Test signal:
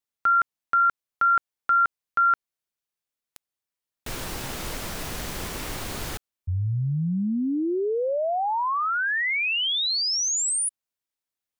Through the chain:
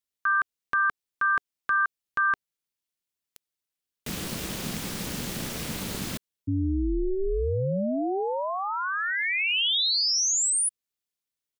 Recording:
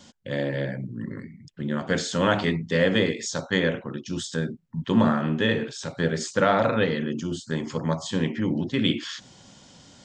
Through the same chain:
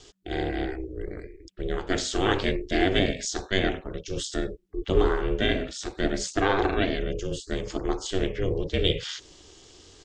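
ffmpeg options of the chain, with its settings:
-af "aeval=exprs='val(0)*sin(2*PI*190*n/s)':c=same,firequalizer=gain_entry='entry(410,0);entry(740,-5);entry(3000,1)':delay=0.05:min_phase=1,volume=2.5dB"

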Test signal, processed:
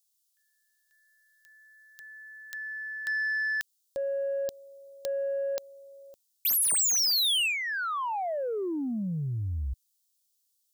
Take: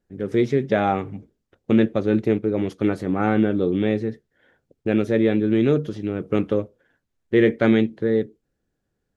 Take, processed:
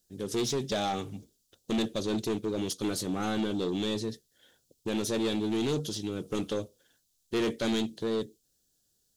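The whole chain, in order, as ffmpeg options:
-filter_complex "[0:a]acrossover=split=3300[a][b];[b]acompressor=threshold=-32dB:ratio=4:attack=1:release=60[c];[a][c]amix=inputs=2:normalize=0,aexciter=amount=14.6:drive=3:freq=3.2k,asoftclip=type=tanh:threshold=-18dB,volume=-6.5dB"

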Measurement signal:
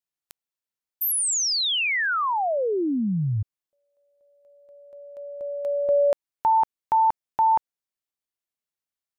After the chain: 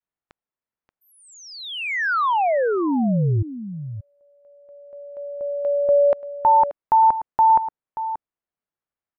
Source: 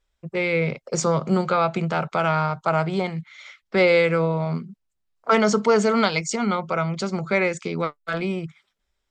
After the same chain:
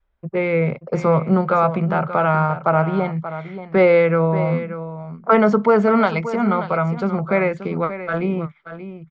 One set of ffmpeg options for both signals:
-filter_complex "[0:a]lowpass=1.6k,adynamicequalizer=threshold=0.0158:dfrequency=370:dqfactor=1.8:tfrequency=370:tqfactor=1.8:attack=5:release=100:ratio=0.375:range=2.5:mode=cutabove:tftype=bell,asplit=2[a][b];[b]aecho=0:1:581:0.251[c];[a][c]amix=inputs=2:normalize=0,volume=5dB"

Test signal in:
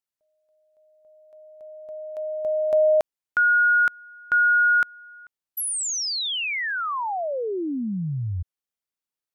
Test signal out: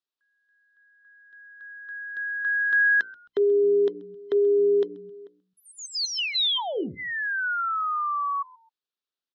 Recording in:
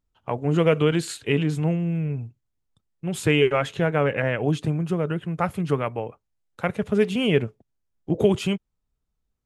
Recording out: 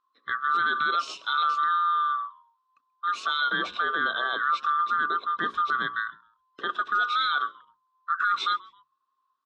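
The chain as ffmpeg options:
-filter_complex "[0:a]afftfilt=real='real(if(lt(b,960),b+48*(1-2*mod(floor(b/48),2)),b),0)':imag='imag(if(lt(b,960),b+48*(1-2*mod(floor(b/48),2)),b),0)':win_size=2048:overlap=0.75,highpass=290,equalizer=f=400:t=q:w=4:g=3,equalizer=f=580:t=q:w=4:g=-4,equalizer=f=830:t=q:w=4:g=-6,equalizer=f=2.1k:t=q:w=4:g=-10,equalizer=f=3.7k:t=q:w=4:g=4,lowpass=f=4.9k:w=0.5412,lowpass=f=4.9k:w=1.3066,alimiter=limit=-18dB:level=0:latency=1:release=17,bandreject=f=60:t=h:w=6,bandreject=f=120:t=h:w=6,bandreject=f=180:t=h:w=6,bandreject=f=240:t=h:w=6,bandreject=f=300:t=h:w=6,bandreject=f=360:t=h:w=6,bandreject=f=420:t=h:w=6,bandreject=f=480:t=h:w=6,bandreject=f=540:t=h:w=6,asplit=2[a][b];[b]asplit=2[c][d];[c]adelay=132,afreqshift=-110,volume=-23.5dB[e];[d]adelay=264,afreqshift=-220,volume=-32.9dB[f];[e][f]amix=inputs=2:normalize=0[g];[a][g]amix=inputs=2:normalize=0,volume=1.5dB"

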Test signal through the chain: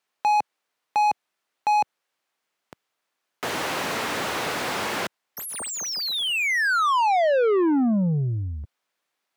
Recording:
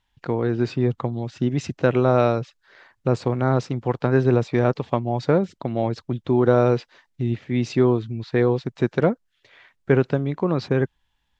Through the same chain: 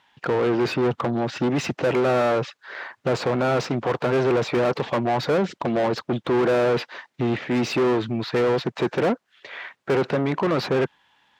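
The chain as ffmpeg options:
-filter_complex "[0:a]asplit=2[a][b];[b]highpass=f=720:p=1,volume=35dB,asoftclip=type=tanh:threshold=-3.5dB[c];[a][c]amix=inputs=2:normalize=0,lowpass=f=1.6k:p=1,volume=-6dB,highpass=110,volume=-9dB"

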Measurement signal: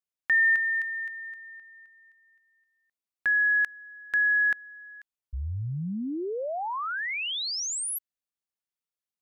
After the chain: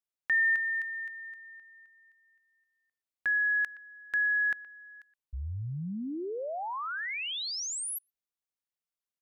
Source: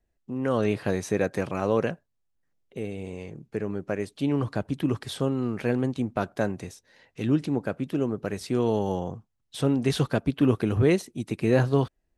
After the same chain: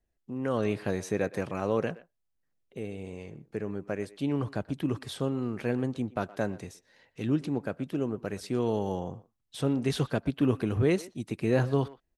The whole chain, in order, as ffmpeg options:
-filter_complex "[0:a]asplit=2[a][b];[b]adelay=120,highpass=300,lowpass=3.4k,asoftclip=type=hard:threshold=-17.5dB,volume=-18dB[c];[a][c]amix=inputs=2:normalize=0,volume=-4dB"

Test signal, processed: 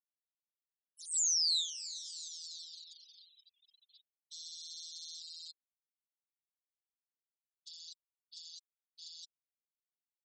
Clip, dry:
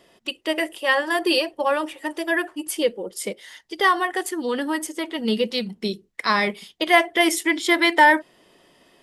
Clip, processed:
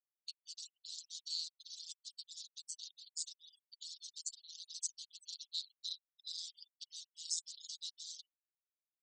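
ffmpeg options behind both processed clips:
-filter_complex "[0:a]aeval=exprs='val(0)*sin(2*PI*82*n/s)':c=same,areverse,acompressor=threshold=-34dB:ratio=16,areverse,acrusher=bits=7:dc=4:mix=0:aa=0.000001,afreqshift=-170,aecho=1:1:382|764|1146:0.126|0.039|0.0121,asplit=2[a][b];[b]asoftclip=type=hard:threshold=-33dB,volume=-10dB[c];[a][c]amix=inputs=2:normalize=0,afftfilt=real='re*gte(hypot(re,im),0.00708)':imag='im*gte(hypot(re,im),0.00708)':win_size=1024:overlap=0.75,asuperpass=centerf=5500:order=12:qfactor=1.3,volume=4dB"

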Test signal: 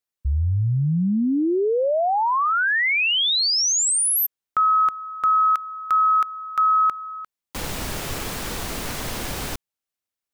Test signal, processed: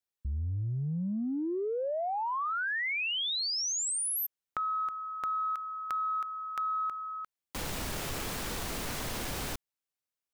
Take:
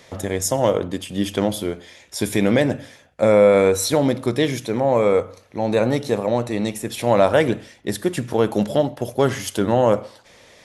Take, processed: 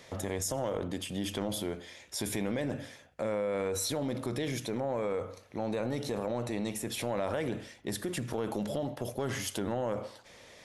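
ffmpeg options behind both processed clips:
-af "acompressor=threshold=-27dB:ratio=6:attack=4.1:release=25:knee=6:detection=peak,volume=-5dB"

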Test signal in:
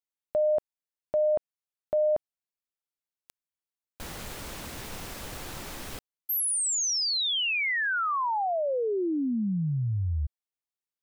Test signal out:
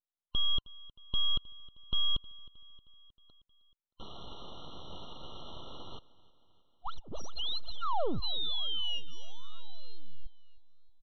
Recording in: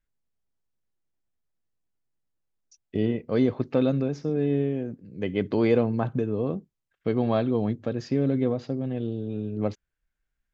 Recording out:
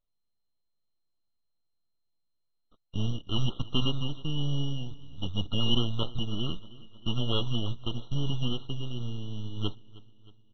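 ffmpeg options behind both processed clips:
-af "afftfilt=real='real(if(lt(b,960),b+48*(1-2*mod(floor(b/48),2)),b),0)':imag='imag(if(lt(b,960),b+48*(1-2*mod(floor(b/48),2)),b),0)':win_size=2048:overlap=0.75,adynamicequalizer=threshold=0.00794:dfrequency=330:dqfactor=0.71:tfrequency=330:tqfactor=0.71:attack=5:release=100:ratio=0.375:range=2.5:mode=boostabove:tftype=bell,aresample=11025,aeval=exprs='abs(val(0))':c=same,aresample=44100,aecho=1:1:313|626|939|1252|1565:0.0891|0.0526|0.031|0.0183|0.0108,afftfilt=real='re*eq(mod(floor(b*sr/1024/1400),2),0)':imag='im*eq(mod(floor(b*sr/1024/1400),2),0)':win_size=1024:overlap=0.75,volume=-1.5dB"

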